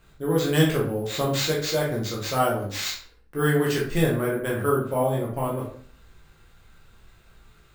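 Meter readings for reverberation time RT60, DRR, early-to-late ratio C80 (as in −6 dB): 0.50 s, −4.5 dB, 10.0 dB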